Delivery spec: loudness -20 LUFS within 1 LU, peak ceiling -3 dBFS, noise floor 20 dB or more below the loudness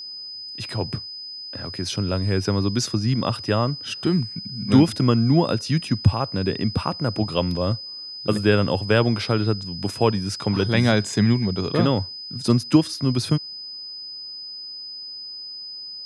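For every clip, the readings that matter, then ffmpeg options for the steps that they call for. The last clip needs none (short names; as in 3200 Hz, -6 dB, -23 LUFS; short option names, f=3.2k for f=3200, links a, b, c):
steady tone 5000 Hz; tone level -33 dBFS; loudness -23.0 LUFS; peak -3.0 dBFS; loudness target -20.0 LUFS
-> -af "bandreject=f=5k:w=30"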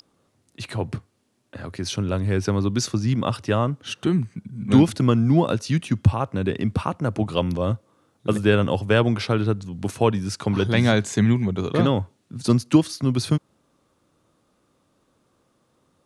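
steady tone none; loudness -22.5 LUFS; peak -3.5 dBFS; loudness target -20.0 LUFS
-> -af "volume=2.5dB,alimiter=limit=-3dB:level=0:latency=1"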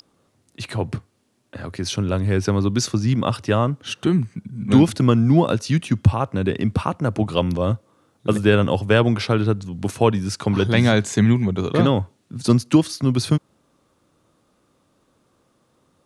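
loudness -20.0 LUFS; peak -3.0 dBFS; noise floor -65 dBFS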